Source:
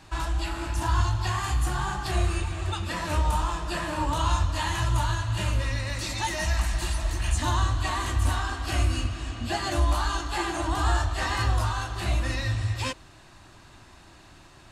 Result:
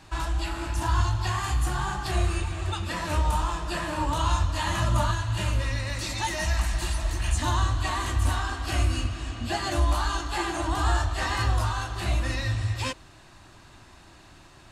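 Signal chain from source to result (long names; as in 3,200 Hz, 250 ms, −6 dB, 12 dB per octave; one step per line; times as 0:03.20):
0:04.67–0:05.11: hollow resonant body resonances 220/590/1,200 Hz, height 11 dB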